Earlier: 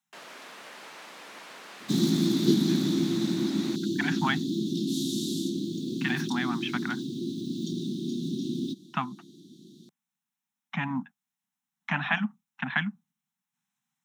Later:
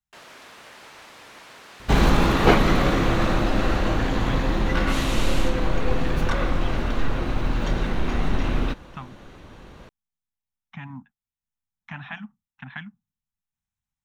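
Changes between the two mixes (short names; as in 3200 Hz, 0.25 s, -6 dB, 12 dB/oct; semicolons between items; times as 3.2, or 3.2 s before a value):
speech -9.5 dB; second sound: remove Chebyshev band-stop 360–3500 Hz, order 5; master: remove steep high-pass 160 Hz 36 dB/oct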